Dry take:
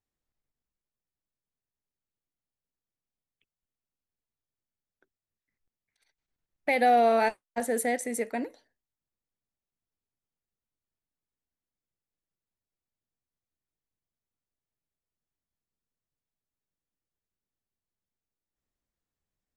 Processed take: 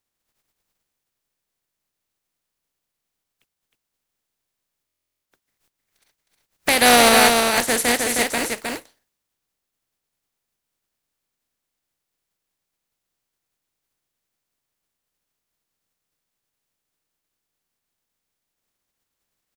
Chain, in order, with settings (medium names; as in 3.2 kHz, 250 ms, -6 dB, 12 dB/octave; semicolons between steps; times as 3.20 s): spectral contrast reduction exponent 0.4; delay 312 ms -4 dB; buffer glitch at 4.86 s, samples 1024, times 15; trim +8 dB